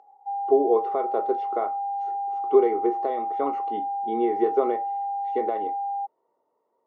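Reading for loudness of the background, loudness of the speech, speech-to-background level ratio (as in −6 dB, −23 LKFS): −29.5 LKFS, −26.0 LKFS, 3.5 dB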